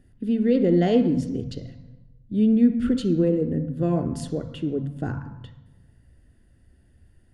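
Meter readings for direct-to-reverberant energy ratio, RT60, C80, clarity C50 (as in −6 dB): 9.0 dB, 1.0 s, 12.5 dB, 10.5 dB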